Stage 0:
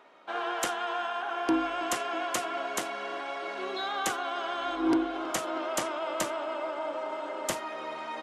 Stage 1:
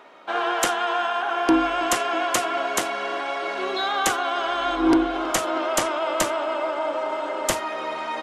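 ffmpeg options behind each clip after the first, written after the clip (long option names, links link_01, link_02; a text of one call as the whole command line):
ffmpeg -i in.wav -af "asubboost=boost=3:cutoff=80,volume=8.5dB" out.wav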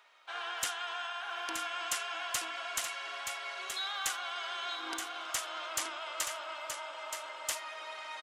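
ffmpeg -i in.wav -filter_complex "[0:a]aderivative,asplit=2[link_01][link_02];[link_02]highpass=frequency=720:poles=1,volume=14dB,asoftclip=type=tanh:threshold=-7dB[link_03];[link_01][link_03]amix=inputs=2:normalize=0,lowpass=frequency=3000:poles=1,volume=-6dB,aecho=1:1:925:0.473,volume=-7dB" out.wav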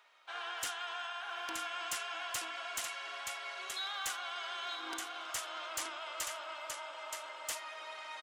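ffmpeg -i in.wav -af "asoftclip=type=hard:threshold=-29dB,volume=-2.5dB" out.wav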